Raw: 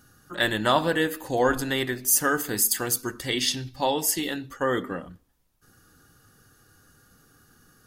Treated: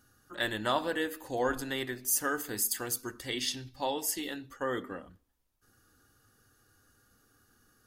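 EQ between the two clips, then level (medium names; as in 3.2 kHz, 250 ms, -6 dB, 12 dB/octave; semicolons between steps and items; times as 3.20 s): peaking EQ 160 Hz -12.5 dB 0.27 oct; -8.0 dB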